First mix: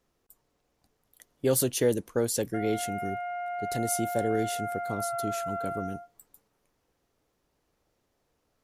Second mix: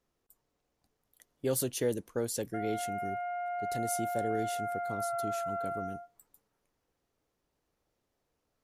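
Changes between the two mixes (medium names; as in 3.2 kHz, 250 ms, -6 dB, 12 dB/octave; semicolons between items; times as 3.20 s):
speech -6.0 dB; background: add distance through air 400 m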